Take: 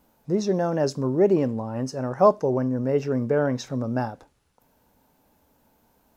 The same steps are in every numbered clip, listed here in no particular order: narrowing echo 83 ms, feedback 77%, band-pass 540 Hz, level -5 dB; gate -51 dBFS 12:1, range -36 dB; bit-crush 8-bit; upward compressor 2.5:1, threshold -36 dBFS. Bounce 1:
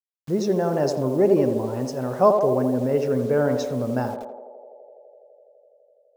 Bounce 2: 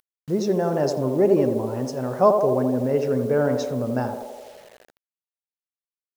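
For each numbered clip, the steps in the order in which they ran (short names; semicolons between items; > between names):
bit-crush > gate > narrowing echo > upward compressor; gate > upward compressor > narrowing echo > bit-crush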